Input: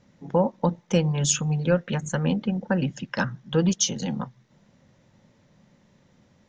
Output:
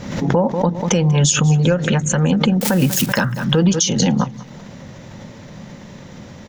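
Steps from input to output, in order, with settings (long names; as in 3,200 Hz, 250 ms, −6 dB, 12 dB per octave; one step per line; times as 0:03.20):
0:02.61–0:03.06: spike at every zero crossing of −25 dBFS
downward compressor 2.5 to 1, threshold −40 dBFS, peak gain reduction 16.5 dB
repeating echo 191 ms, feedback 38%, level −20 dB
boost into a limiter +27 dB
background raised ahead of every attack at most 64 dB per second
level −5 dB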